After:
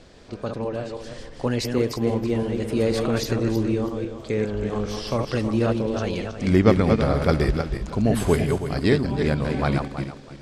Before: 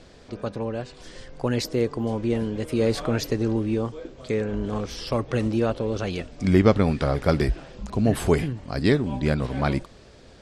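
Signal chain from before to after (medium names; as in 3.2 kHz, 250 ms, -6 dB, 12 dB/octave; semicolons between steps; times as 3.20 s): backward echo that repeats 162 ms, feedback 47%, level -4.5 dB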